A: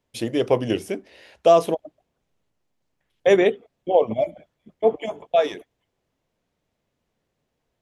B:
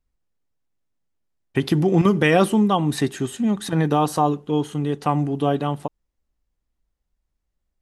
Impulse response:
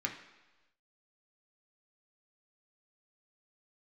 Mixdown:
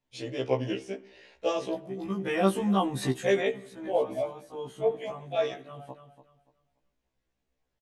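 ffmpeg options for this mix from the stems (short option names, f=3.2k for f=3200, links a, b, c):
-filter_complex "[0:a]lowpass=f=7.5k:w=0.5412,lowpass=f=7.5k:w=1.3066,volume=-6dB,asplit=3[a][b][c];[b]volume=-11.5dB[d];[1:a]adelay=50,volume=-4dB,asplit=2[e][f];[f]volume=-21.5dB[g];[c]apad=whole_len=346627[h];[e][h]sidechaincompress=threshold=-42dB:ratio=8:attack=45:release=610[i];[2:a]atrim=start_sample=2205[j];[d][j]afir=irnorm=-1:irlink=0[k];[g]aecho=0:1:289|578|867|1156:1|0.27|0.0729|0.0197[l];[a][i][k][l]amix=inputs=4:normalize=0,afftfilt=real='re*1.73*eq(mod(b,3),0)':imag='im*1.73*eq(mod(b,3),0)':win_size=2048:overlap=0.75"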